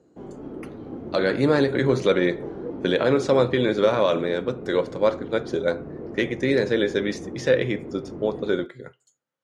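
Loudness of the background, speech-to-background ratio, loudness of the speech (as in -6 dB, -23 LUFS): -36.5 LUFS, 13.5 dB, -23.0 LUFS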